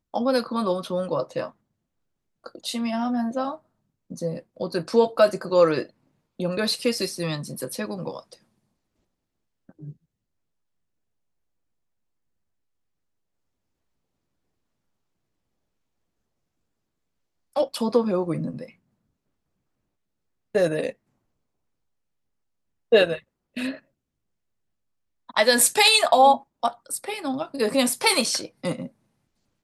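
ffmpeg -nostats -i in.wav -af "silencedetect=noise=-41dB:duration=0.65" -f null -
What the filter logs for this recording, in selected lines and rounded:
silence_start: 1.50
silence_end: 2.46 | silence_duration: 0.96
silence_start: 8.34
silence_end: 9.69 | silence_duration: 1.35
silence_start: 9.92
silence_end: 17.56 | silence_duration: 7.64
silence_start: 18.70
silence_end: 20.55 | silence_duration: 1.85
silence_start: 20.92
silence_end: 22.92 | silence_duration: 2.00
silence_start: 23.79
silence_end: 25.29 | silence_duration: 1.50
silence_start: 28.88
silence_end: 29.63 | silence_duration: 0.76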